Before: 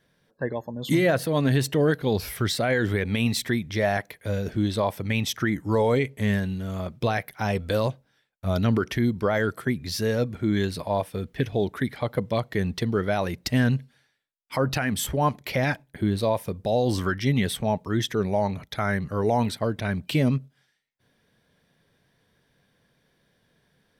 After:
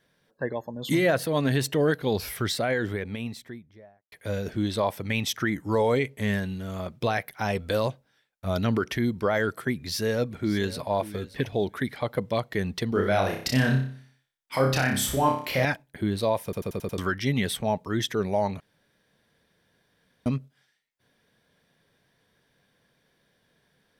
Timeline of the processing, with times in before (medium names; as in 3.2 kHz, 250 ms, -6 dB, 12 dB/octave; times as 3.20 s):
2.28–4.12 s: studio fade out
9.73–10.88 s: echo throw 580 ms, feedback 10%, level -15 dB
12.89–15.65 s: flutter echo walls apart 5.2 m, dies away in 0.49 s
16.44 s: stutter in place 0.09 s, 6 plays
18.60–20.26 s: room tone
whole clip: bass shelf 240 Hz -5 dB